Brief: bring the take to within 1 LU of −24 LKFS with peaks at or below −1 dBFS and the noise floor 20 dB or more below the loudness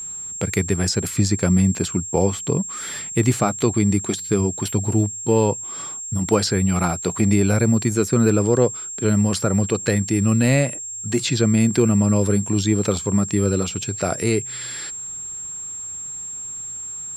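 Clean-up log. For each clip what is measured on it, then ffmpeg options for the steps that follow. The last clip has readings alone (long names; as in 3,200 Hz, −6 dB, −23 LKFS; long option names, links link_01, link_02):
interfering tone 7,500 Hz; level of the tone −29 dBFS; integrated loudness −20.5 LKFS; sample peak −3.5 dBFS; target loudness −24.0 LKFS
→ -af "bandreject=frequency=7500:width=30"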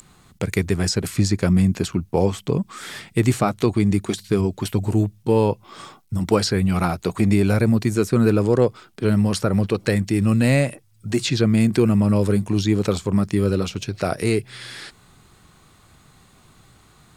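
interfering tone none found; integrated loudness −20.5 LKFS; sample peak −3.0 dBFS; target loudness −24.0 LKFS
→ -af "volume=-3.5dB"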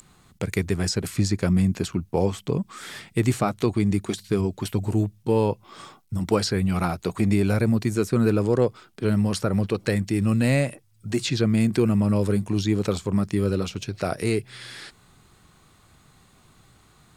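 integrated loudness −24.0 LKFS; sample peak −6.5 dBFS; background noise floor −58 dBFS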